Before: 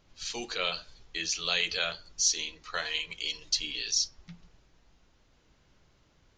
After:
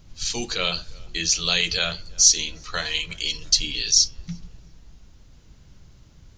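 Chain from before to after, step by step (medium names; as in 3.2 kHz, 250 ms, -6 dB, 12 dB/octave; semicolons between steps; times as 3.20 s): tone controls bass +13 dB, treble +8 dB; on a send: tape echo 353 ms, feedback 71%, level -23 dB, low-pass 1.4 kHz; on the sum: trim +4.5 dB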